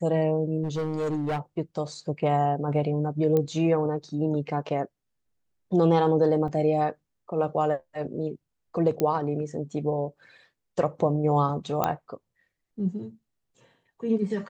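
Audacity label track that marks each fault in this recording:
0.630000	1.390000	clipped -24.5 dBFS
3.370000	3.370000	pop -14 dBFS
6.480000	6.480000	dropout 2.9 ms
9.000000	9.000000	pop -13 dBFS
11.840000	11.840000	pop -10 dBFS

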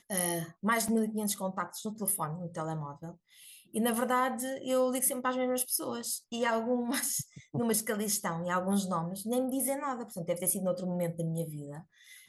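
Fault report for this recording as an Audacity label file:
0.880000	0.880000	dropout 3.7 ms

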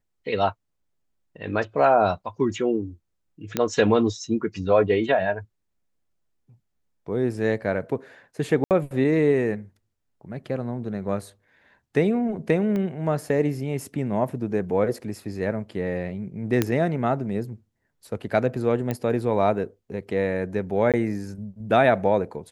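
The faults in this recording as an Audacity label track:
3.570000	3.570000	pop -8 dBFS
8.640000	8.710000	dropout 68 ms
12.760000	12.760000	pop -18 dBFS
16.620000	16.620000	pop -7 dBFS
18.910000	18.910000	pop -14 dBFS
20.920000	20.940000	dropout 17 ms

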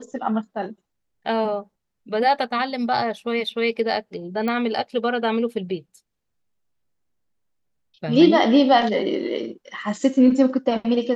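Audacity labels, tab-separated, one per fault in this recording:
4.480000	4.480000	pop -15 dBFS

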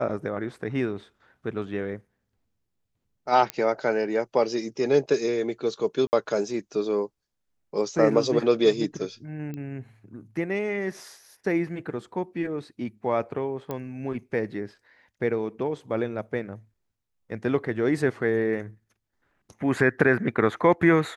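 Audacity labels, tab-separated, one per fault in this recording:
3.500000	3.500000	pop -12 dBFS
6.070000	6.130000	dropout 59 ms
9.540000	9.540000	pop -24 dBFS
13.710000	13.710000	pop -18 dBFS

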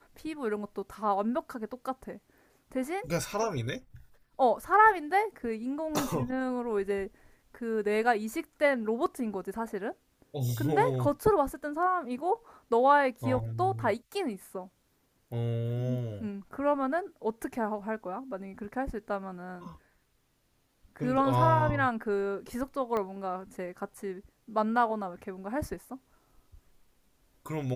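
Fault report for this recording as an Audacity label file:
22.970000	22.970000	pop -20 dBFS

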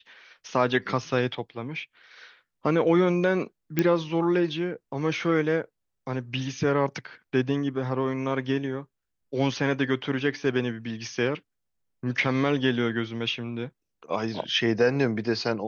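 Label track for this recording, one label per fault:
3.790000	3.790000	pop -9 dBFS

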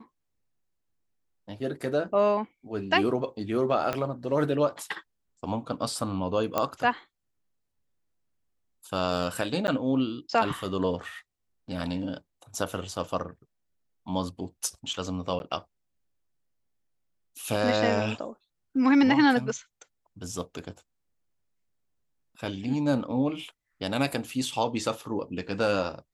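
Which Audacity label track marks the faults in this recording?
3.930000	3.930000	pop -14 dBFS
6.580000	6.580000	pop -11 dBFS
9.670000	9.680000	dropout 9.9 ms
15.390000	15.400000	dropout 11 ms

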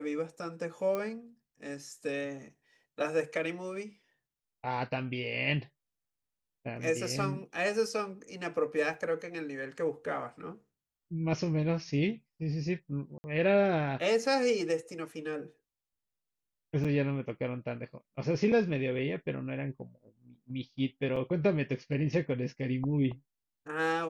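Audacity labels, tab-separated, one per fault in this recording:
0.950000	0.950000	pop -21 dBFS
8.940000	8.940000	dropout 2.6 ms
13.180000	13.240000	dropout 60 ms
16.840000	16.850000	dropout 6.2 ms
21.160000	21.160000	dropout 4.7 ms

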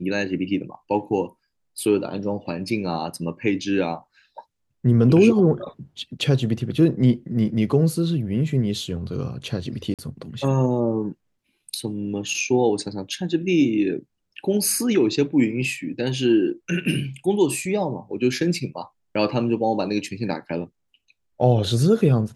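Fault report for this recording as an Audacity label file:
9.940000	9.990000	dropout 47 ms

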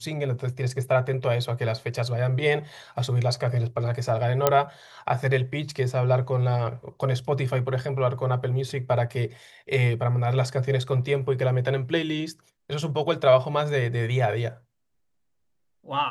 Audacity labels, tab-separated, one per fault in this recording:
4.470000	4.470000	pop -4 dBFS

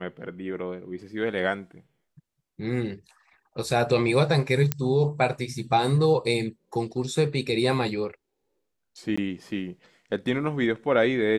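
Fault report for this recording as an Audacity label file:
4.720000	4.720000	pop -7 dBFS
9.160000	9.180000	dropout 15 ms

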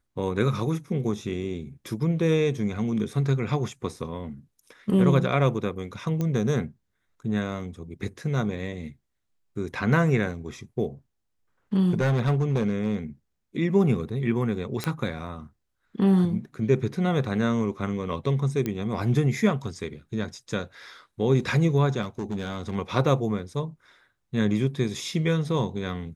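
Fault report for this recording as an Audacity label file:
6.210000	6.210000	pop -16 dBFS
11.910000	12.950000	clipped -18 dBFS
14.840000	14.840000	pop -12 dBFS
18.660000	18.660000	pop -15 dBFS
22.010000	22.760000	clipped -25 dBFS

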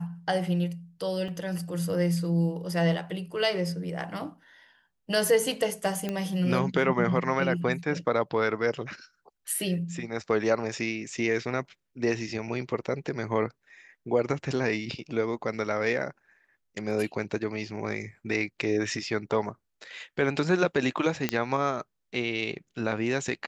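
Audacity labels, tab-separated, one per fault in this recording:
1.280000	1.280000	dropout 4.4 ms
6.090000	6.090000	pop -17 dBFS
21.290000	21.290000	pop -10 dBFS

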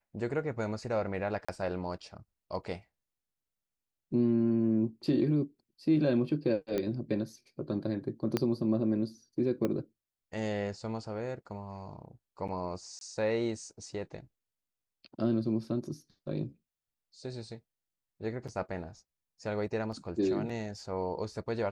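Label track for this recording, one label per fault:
1.450000	1.490000	dropout 35 ms
6.780000	6.780000	pop -19 dBFS
8.370000	8.370000	pop -15 dBFS
9.650000	9.650000	pop -19 dBFS
12.990000	13.010000	dropout 22 ms
19.920000	19.920000	dropout 3.8 ms

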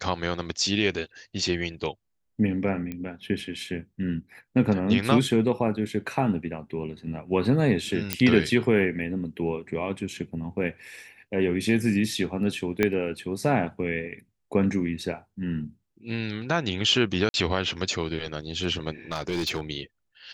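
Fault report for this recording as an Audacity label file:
2.920000	2.920000	pop -21 dBFS
8.130000	8.130000	pop -5 dBFS
12.830000	12.830000	pop -9 dBFS
17.290000	17.340000	dropout 51 ms
19.120000	19.600000	clipped -23 dBFS

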